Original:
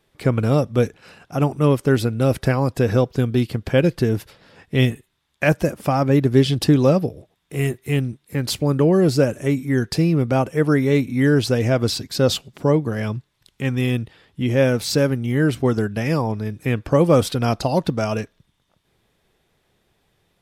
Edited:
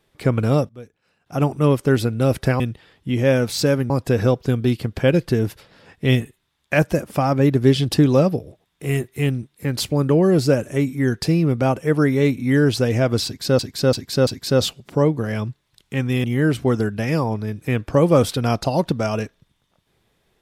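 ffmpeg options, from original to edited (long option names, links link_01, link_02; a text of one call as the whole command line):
ffmpeg -i in.wav -filter_complex "[0:a]asplit=9[link_01][link_02][link_03][link_04][link_05][link_06][link_07][link_08][link_09];[link_01]atrim=end=0.69,asetpts=PTS-STARTPTS,afade=type=out:start_time=0.52:duration=0.17:curve=log:silence=0.0944061[link_10];[link_02]atrim=start=0.69:end=1.26,asetpts=PTS-STARTPTS,volume=-20.5dB[link_11];[link_03]atrim=start=1.26:end=2.602,asetpts=PTS-STARTPTS,afade=type=in:duration=0.17:curve=log:silence=0.0944061[link_12];[link_04]atrim=start=13.918:end=15.222[link_13];[link_05]atrim=start=2.598:end=12.292[link_14];[link_06]atrim=start=11.948:end=12.292[link_15];[link_07]atrim=start=11.948:end=12.292[link_16];[link_08]atrim=start=11.948:end=13.922[link_17];[link_09]atrim=start=15.218[link_18];[link_10][link_11][link_12]concat=n=3:v=0:a=1[link_19];[link_19][link_13]acrossfade=duration=0.004:curve1=hsin:curve2=hsin[link_20];[link_20][link_14]acrossfade=duration=0.004:curve1=hsin:curve2=hsin[link_21];[link_21][link_15]acrossfade=duration=0.004:curve1=hsin:curve2=hsin[link_22];[link_22][link_16]acrossfade=duration=0.004:curve1=hsin:curve2=hsin[link_23];[link_23][link_17]acrossfade=duration=0.004:curve1=hsin:curve2=hsin[link_24];[link_24][link_18]acrossfade=duration=0.004:curve1=hsin:curve2=hsin" out.wav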